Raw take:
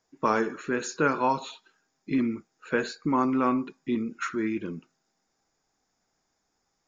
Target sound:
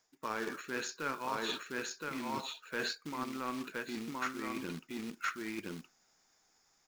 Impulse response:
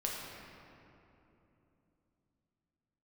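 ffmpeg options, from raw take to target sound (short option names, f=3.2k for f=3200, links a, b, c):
-filter_complex "[0:a]asplit=2[a][b];[b]alimiter=limit=-19.5dB:level=0:latency=1:release=189,volume=-3dB[c];[a][c]amix=inputs=2:normalize=0,acrusher=bits=4:mode=log:mix=0:aa=0.000001,aecho=1:1:1019:0.562,areverse,acompressor=threshold=-32dB:ratio=10,areverse,tiltshelf=f=910:g=-5,aeval=exprs='0.0944*(cos(1*acos(clip(val(0)/0.0944,-1,1)))-cos(1*PI/2))+0.00473*(cos(7*acos(clip(val(0)/0.0944,-1,1)))-cos(7*PI/2))':c=same,acrossover=split=5800[d][e];[e]acompressor=threshold=-53dB:ratio=4:attack=1:release=60[f];[d][f]amix=inputs=2:normalize=0"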